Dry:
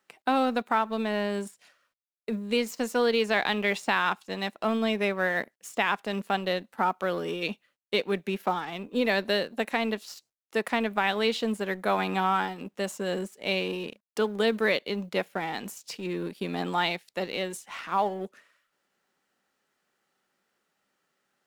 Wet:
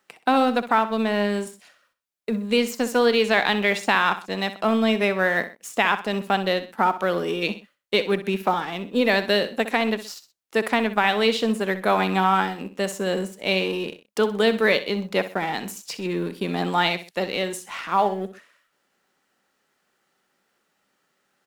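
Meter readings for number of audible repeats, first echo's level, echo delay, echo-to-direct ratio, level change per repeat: 2, -13.0 dB, 63 ms, -12.5 dB, -8.5 dB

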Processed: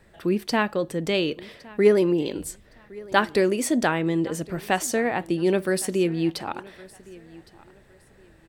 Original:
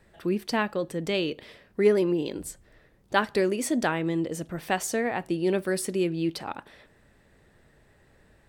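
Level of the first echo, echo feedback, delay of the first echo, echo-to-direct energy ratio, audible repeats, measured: -22.0 dB, 26%, 1113 ms, -21.5 dB, 2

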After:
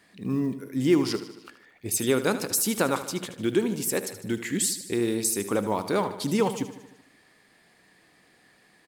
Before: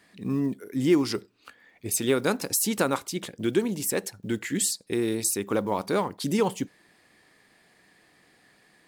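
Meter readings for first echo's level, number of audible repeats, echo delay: -12.5 dB, 5, 76 ms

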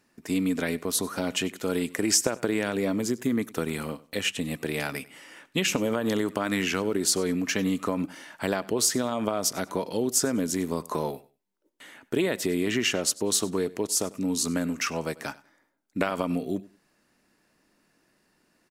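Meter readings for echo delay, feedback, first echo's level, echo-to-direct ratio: 97 ms, 22%, -21.0 dB, -21.0 dB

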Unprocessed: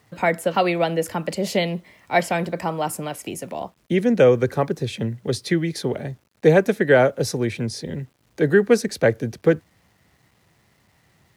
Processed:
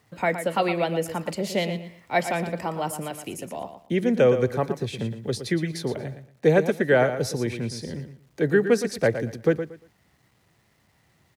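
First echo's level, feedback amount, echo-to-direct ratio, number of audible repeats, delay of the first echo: -10.0 dB, 23%, -10.0 dB, 2, 116 ms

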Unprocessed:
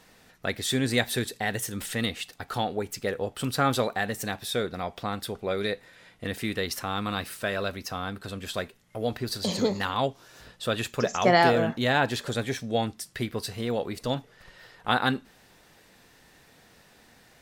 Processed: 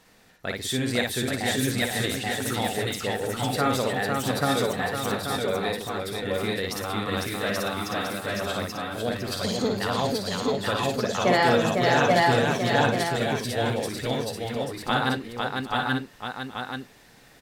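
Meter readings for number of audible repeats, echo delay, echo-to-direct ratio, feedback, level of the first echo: 8, 55 ms, 3.5 dB, no regular repeats, -3.5 dB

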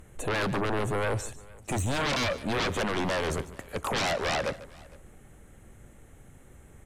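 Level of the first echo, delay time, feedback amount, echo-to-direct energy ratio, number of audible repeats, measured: -16.5 dB, 146 ms, no regular repeats, -16.0 dB, 2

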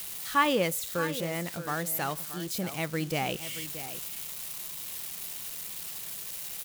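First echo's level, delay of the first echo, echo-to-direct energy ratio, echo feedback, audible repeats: -12.5 dB, 627 ms, -12.5 dB, no regular repeats, 1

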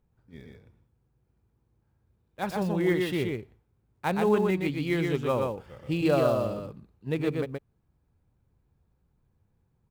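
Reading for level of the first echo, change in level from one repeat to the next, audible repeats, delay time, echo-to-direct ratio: -3.5 dB, no regular repeats, 1, 123 ms, -3.5 dB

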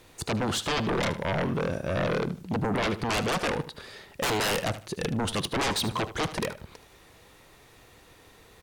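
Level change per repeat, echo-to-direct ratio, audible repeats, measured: -12.5 dB, -13.5 dB, 2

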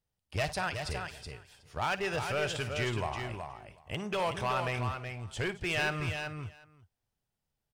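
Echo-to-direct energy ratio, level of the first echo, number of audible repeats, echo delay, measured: -5.5 dB, -17.5 dB, 5, 53 ms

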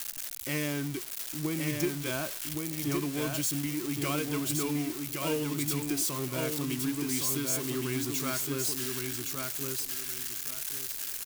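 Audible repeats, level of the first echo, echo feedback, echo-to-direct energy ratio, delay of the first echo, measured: 3, -4.0 dB, 24%, -3.5 dB, 1116 ms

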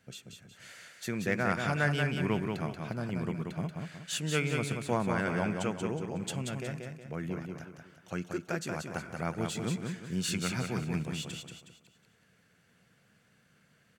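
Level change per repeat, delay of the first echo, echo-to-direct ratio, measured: -8.0 dB, 183 ms, -4.0 dB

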